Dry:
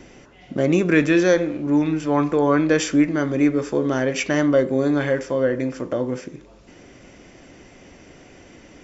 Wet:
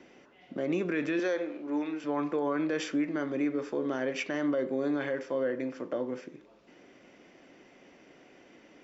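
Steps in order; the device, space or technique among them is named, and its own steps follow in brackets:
0:01.19–0:02.04: high-pass filter 320 Hz 12 dB per octave
DJ mixer with the lows and highs turned down (three-way crossover with the lows and the highs turned down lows −19 dB, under 180 Hz, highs −14 dB, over 5,000 Hz; brickwall limiter −13 dBFS, peak gain reduction 6.5 dB)
level −8.5 dB

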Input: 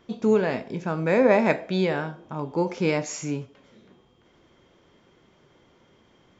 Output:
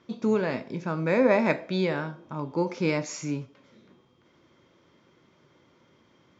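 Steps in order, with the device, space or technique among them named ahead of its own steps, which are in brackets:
car door speaker (loudspeaker in its box 100–6,500 Hz, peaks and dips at 200 Hz −3 dB, 430 Hz −5 dB, 740 Hz −7 dB, 1,700 Hz −3 dB, 3,000 Hz −5 dB)

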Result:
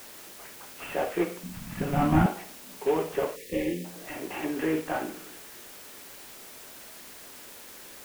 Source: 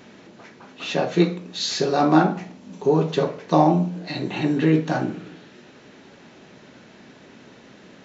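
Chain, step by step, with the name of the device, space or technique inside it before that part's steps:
army field radio (band-pass filter 390–3,300 Hz; variable-slope delta modulation 16 kbit/s; white noise bed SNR 15 dB)
0:01.43–0:02.26: low shelf with overshoot 280 Hz +12.5 dB, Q 3
0:03.36–0:03.85: gain on a spectral selection 580–1,700 Hz −29 dB
level −3.5 dB

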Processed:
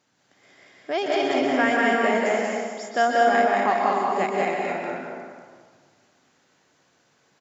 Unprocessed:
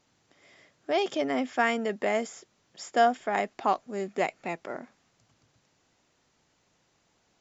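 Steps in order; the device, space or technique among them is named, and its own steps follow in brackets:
stadium PA (high-pass filter 120 Hz; parametric band 1,600 Hz +5 dB 0.38 octaves; loudspeakers that aren't time-aligned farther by 65 metres −1 dB, 84 metres −6 dB; convolution reverb RT60 1.7 s, pre-delay 117 ms, DRR 0 dB)

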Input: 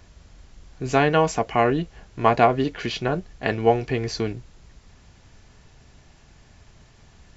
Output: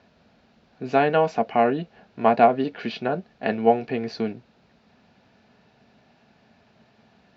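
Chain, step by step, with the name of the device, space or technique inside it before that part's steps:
kitchen radio (loudspeaker in its box 220–4,000 Hz, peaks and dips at 220 Hz +8 dB, 330 Hz −6 dB, 690 Hz +3 dB, 1,100 Hz −6 dB, 2,000 Hz −6 dB, 3,200 Hz −6 dB)

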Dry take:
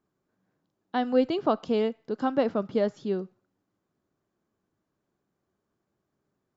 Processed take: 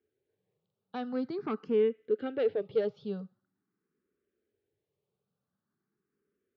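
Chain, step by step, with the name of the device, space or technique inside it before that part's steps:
barber-pole phaser into a guitar amplifier (frequency shifter mixed with the dry sound +0.45 Hz; soft clipping −22 dBFS, distortion −16 dB; loudspeaker in its box 75–4,100 Hz, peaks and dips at 300 Hz −5 dB, 430 Hz +9 dB, 680 Hz −9 dB, 990 Hz −9 dB)
level −2 dB

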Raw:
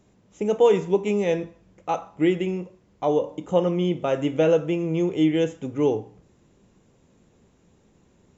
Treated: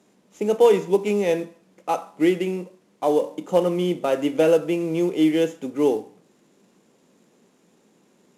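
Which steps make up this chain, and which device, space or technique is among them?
early wireless headset (high-pass filter 190 Hz 24 dB per octave; variable-slope delta modulation 64 kbit/s)
level +2 dB

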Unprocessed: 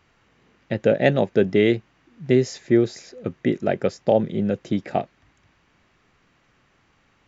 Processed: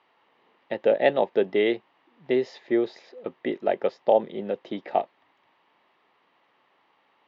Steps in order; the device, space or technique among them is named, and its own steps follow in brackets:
phone earpiece (loudspeaker in its box 440–3,700 Hz, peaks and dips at 910 Hz +6 dB, 1,500 Hz −8 dB, 2,400 Hz −5 dB)

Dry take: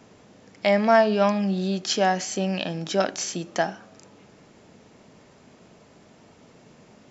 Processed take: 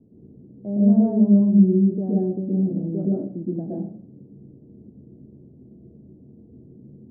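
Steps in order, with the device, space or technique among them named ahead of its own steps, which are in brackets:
next room (low-pass filter 360 Hz 24 dB per octave; convolution reverb RT60 0.50 s, pre-delay 113 ms, DRR −5.5 dB)

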